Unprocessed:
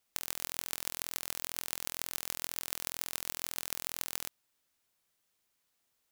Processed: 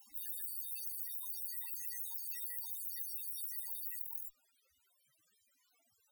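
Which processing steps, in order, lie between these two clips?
added harmonics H 5 -24 dB, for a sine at -4.5 dBFS; pre-echo 0.295 s -19 dB; loudest bins only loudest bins 16; gain +15 dB

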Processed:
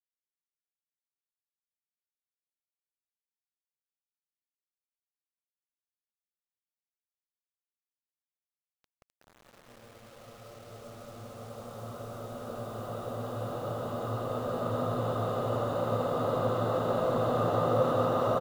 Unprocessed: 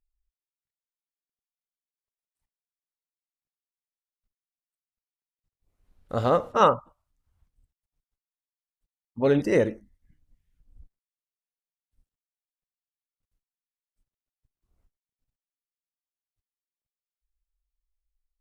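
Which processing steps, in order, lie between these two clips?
Paulstretch 17×, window 1.00 s, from 5.2; loudspeakers at several distances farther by 60 m -3 dB, 85 m -10 dB; requantised 8-bit, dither none; gain -5.5 dB

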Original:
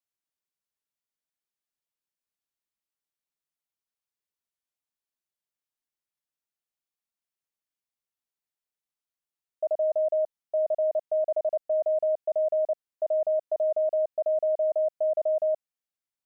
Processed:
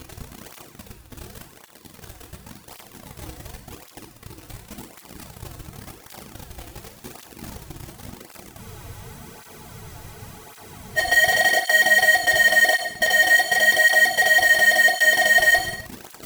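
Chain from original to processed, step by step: half-waves squared off; Chebyshev band-stop 350–730 Hz, order 4; band shelf 630 Hz +10.5 dB 1 oct; sample leveller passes 5; reverse; upward compressor, threshold -52 dBFS; reverse; added noise brown -62 dBFS; in parallel at -8 dB: fuzz box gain 59 dB, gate -59 dBFS; on the sum: non-linear reverb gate 0.33 s falling, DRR 3 dB; spectral freeze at 8.58, 2.40 s; tape flanging out of phase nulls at 0.9 Hz, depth 5.2 ms

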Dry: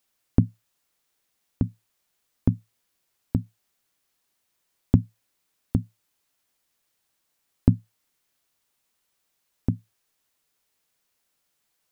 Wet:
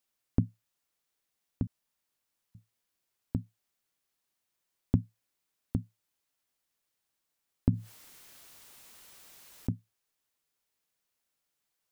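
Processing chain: 1.67–2.55 room tone; 7.73–9.72 fast leveller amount 50%; gain -8 dB

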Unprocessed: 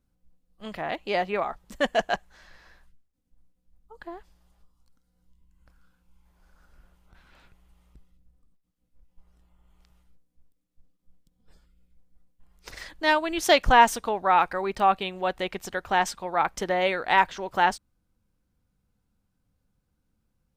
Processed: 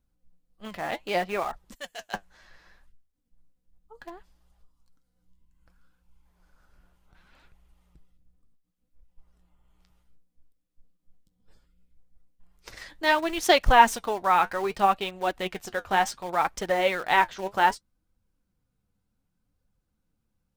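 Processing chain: 1.74–2.14 pre-emphasis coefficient 0.9; in parallel at -11 dB: bit-crush 5-bit; on the sum: flange 0.66 Hz, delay 1 ms, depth 10 ms, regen +54%; gain +1.5 dB

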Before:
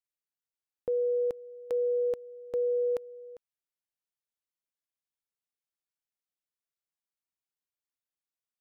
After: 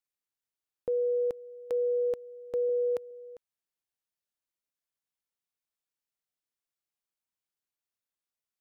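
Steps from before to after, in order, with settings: 2.69–3.11 HPF 73 Hz 24 dB/oct

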